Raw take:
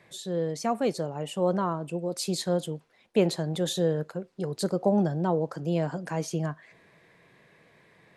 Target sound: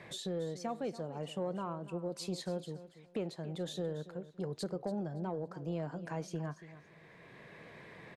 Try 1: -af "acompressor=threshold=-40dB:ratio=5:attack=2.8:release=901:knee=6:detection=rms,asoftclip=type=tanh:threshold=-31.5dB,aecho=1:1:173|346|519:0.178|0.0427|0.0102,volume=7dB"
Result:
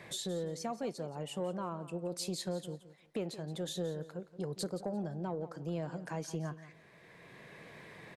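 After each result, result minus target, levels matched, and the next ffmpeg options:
echo 0.11 s early; 4000 Hz band +2.5 dB
-af "acompressor=threshold=-40dB:ratio=5:attack=2.8:release=901:knee=6:detection=rms,asoftclip=type=tanh:threshold=-31.5dB,aecho=1:1:283|566|849:0.178|0.0427|0.0102,volume=7dB"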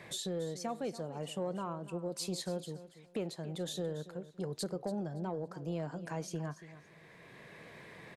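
4000 Hz band +2.5 dB
-af "acompressor=threshold=-40dB:ratio=5:attack=2.8:release=901:knee=6:detection=rms,lowpass=f=3.8k:p=1,asoftclip=type=tanh:threshold=-31.5dB,aecho=1:1:283|566|849:0.178|0.0427|0.0102,volume=7dB"

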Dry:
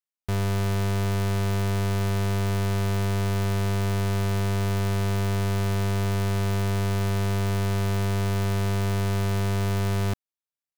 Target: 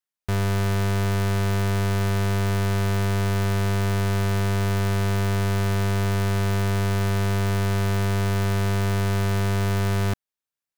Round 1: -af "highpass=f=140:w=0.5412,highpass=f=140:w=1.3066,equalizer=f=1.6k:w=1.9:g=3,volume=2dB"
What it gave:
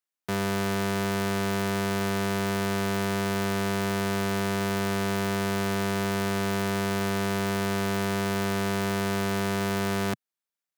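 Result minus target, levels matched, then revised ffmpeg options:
125 Hz band -6.5 dB
-af "equalizer=f=1.6k:w=1.9:g=3,volume=2dB"

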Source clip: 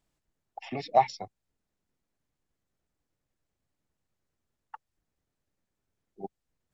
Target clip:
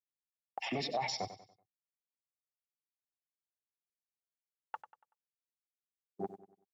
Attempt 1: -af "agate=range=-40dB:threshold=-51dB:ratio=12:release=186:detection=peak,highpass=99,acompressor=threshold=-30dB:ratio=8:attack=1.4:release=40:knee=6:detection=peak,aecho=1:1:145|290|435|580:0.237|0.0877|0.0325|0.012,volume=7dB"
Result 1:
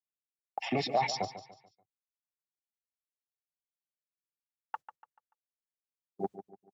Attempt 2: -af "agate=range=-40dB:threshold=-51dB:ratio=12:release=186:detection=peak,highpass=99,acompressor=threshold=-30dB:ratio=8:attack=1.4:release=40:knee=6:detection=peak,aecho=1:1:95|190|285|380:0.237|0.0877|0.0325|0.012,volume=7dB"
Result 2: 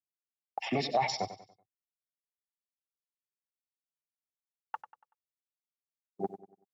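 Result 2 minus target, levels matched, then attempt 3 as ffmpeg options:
compressor: peak gain reduction -7.5 dB
-af "agate=range=-40dB:threshold=-51dB:ratio=12:release=186:detection=peak,highpass=99,acompressor=threshold=-38.5dB:ratio=8:attack=1.4:release=40:knee=6:detection=peak,aecho=1:1:95|190|285|380:0.237|0.0877|0.0325|0.012,volume=7dB"

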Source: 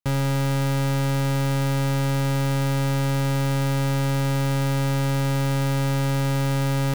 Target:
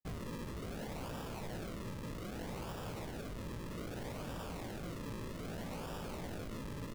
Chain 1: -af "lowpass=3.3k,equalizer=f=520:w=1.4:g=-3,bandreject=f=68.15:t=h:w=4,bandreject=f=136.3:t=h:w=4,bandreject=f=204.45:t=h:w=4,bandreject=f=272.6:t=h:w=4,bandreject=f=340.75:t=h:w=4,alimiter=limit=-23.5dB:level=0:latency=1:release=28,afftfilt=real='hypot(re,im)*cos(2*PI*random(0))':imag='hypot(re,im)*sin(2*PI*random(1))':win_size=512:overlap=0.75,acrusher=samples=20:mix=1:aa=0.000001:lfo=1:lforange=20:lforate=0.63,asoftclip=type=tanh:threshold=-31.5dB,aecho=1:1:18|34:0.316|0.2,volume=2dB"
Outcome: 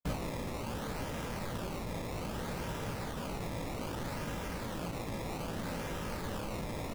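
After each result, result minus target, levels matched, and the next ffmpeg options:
soft clip: distortion -11 dB; decimation with a swept rate: distortion -4 dB
-af "lowpass=3.3k,equalizer=f=520:w=1.4:g=-3,bandreject=f=68.15:t=h:w=4,bandreject=f=136.3:t=h:w=4,bandreject=f=204.45:t=h:w=4,bandreject=f=272.6:t=h:w=4,bandreject=f=340.75:t=h:w=4,alimiter=limit=-23.5dB:level=0:latency=1:release=28,afftfilt=real='hypot(re,im)*cos(2*PI*random(0))':imag='hypot(re,im)*sin(2*PI*random(1))':win_size=512:overlap=0.75,acrusher=samples=20:mix=1:aa=0.000001:lfo=1:lforange=20:lforate=0.63,asoftclip=type=tanh:threshold=-42.5dB,aecho=1:1:18|34:0.316|0.2,volume=2dB"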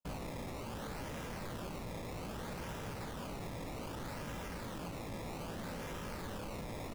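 decimation with a swept rate: distortion -4 dB
-af "lowpass=3.3k,equalizer=f=520:w=1.4:g=-3,bandreject=f=68.15:t=h:w=4,bandreject=f=136.3:t=h:w=4,bandreject=f=204.45:t=h:w=4,bandreject=f=272.6:t=h:w=4,bandreject=f=340.75:t=h:w=4,alimiter=limit=-23.5dB:level=0:latency=1:release=28,afftfilt=real='hypot(re,im)*cos(2*PI*random(0))':imag='hypot(re,im)*sin(2*PI*random(1))':win_size=512:overlap=0.75,acrusher=samples=41:mix=1:aa=0.000001:lfo=1:lforange=41:lforate=0.63,asoftclip=type=tanh:threshold=-42.5dB,aecho=1:1:18|34:0.316|0.2,volume=2dB"

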